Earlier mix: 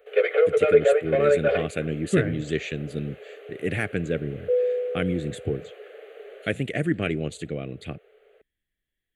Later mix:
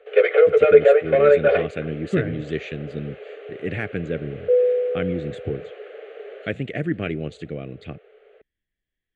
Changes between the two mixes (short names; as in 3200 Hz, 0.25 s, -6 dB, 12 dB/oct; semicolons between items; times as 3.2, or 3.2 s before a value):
background +5.5 dB; master: add air absorption 140 m